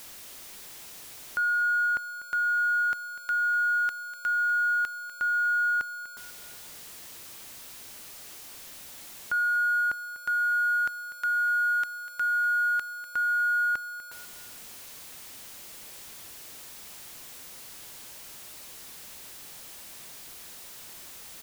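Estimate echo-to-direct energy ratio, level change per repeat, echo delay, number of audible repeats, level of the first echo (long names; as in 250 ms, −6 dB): −14.0 dB, −9.0 dB, 246 ms, 3, −14.5 dB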